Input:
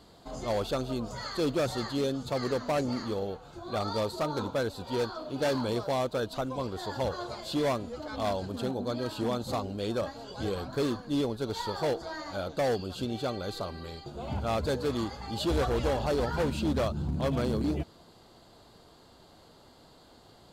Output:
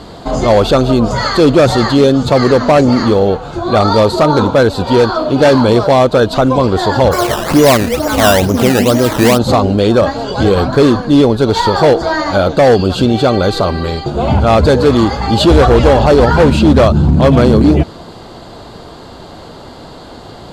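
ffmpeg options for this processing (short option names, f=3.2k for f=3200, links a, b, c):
-filter_complex "[0:a]lowpass=11k,highshelf=f=3.7k:g=-7.5,asplit=3[a][b][c];[a]afade=t=out:st=7.11:d=0.02[d];[b]acrusher=samples=14:mix=1:aa=0.000001:lfo=1:lforange=14:lforate=2.2,afade=t=in:st=7.11:d=0.02,afade=t=out:st=9.37:d=0.02[e];[c]afade=t=in:st=9.37:d=0.02[f];[d][e][f]amix=inputs=3:normalize=0,alimiter=level_in=25.5dB:limit=-1dB:release=50:level=0:latency=1,volume=-1dB"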